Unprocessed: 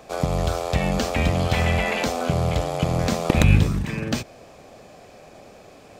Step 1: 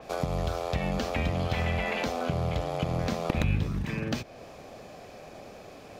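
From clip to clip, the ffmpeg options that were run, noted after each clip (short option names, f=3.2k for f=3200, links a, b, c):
-af "equalizer=f=8k:t=o:w=0.38:g=-5.5,acompressor=threshold=-31dB:ratio=2,adynamicequalizer=threshold=0.00251:dfrequency=5100:dqfactor=0.7:tfrequency=5100:tqfactor=0.7:attack=5:release=100:ratio=0.375:range=2.5:mode=cutabove:tftype=highshelf"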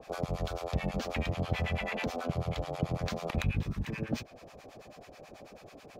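-filter_complex "[0:a]acrossover=split=800[a][b];[a]aeval=exprs='val(0)*(1-1/2+1/2*cos(2*PI*9.2*n/s))':c=same[c];[b]aeval=exprs='val(0)*(1-1/2-1/2*cos(2*PI*9.2*n/s))':c=same[d];[c][d]amix=inputs=2:normalize=0"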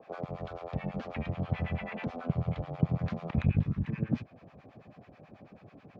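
-af "asubboost=boost=6:cutoff=190,aeval=exprs='0.531*(cos(1*acos(clip(val(0)/0.531,-1,1)))-cos(1*PI/2))+0.0211*(cos(7*acos(clip(val(0)/0.531,-1,1)))-cos(7*PI/2))':c=same,highpass=140,lowpass=2.2k"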